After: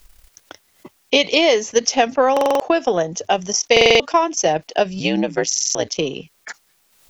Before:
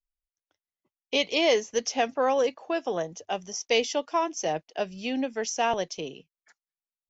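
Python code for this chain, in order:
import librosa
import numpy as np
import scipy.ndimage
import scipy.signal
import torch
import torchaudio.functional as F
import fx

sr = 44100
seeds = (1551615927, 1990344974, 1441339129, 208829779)

y = fx.transient(x, sr, attack_db=8, sustain_db=-8)
y = fx.ring_mod(y, sr, carrier_hz=60.0, at=(4.99, 5.96), fade=0.02)
y = fx.buffer_glitch(y, sr, at_s=(2.32, 3.72, 5.47), block=2048, repeats=5)
y = fx.env_flatten(y, sr, amount_pct=50)
y = y * librosa.db_to_amplitude(3.0)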